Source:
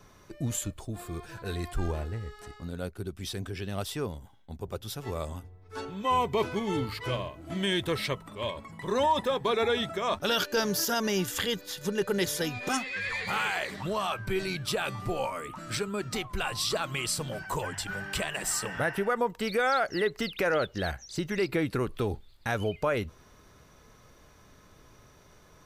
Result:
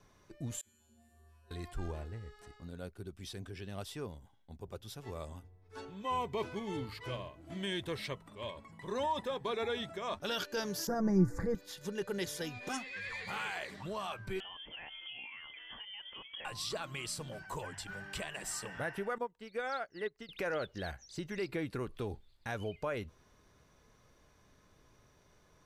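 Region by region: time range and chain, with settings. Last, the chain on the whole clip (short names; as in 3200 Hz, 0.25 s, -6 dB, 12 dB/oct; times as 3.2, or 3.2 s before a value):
0.61–1.51 low shelf 86 Hz -9.5 dB + resonator 77 Hz, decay 1.5 s, harmonics odd, mix 100% + flutter echo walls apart 11 m, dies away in 1.2 s
10.87–11.55 Butterworth band-stop 3100 Hz, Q 0.95 + tilt -4.5 dB/oct + comb 6 ms, depth 59%
14.4–16.45 compressor 3:1, threshold -36 dBFS + inverted band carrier 3300 Hz
19.18–20.29 high shelf 10000 Hz -8.5 dB + upward expander 2.5:1, over -35 dBFS
whole clip: Bessel low-pass 12000 Hz, order 2; notch 1300 Hz, Q 21; gain -9 dB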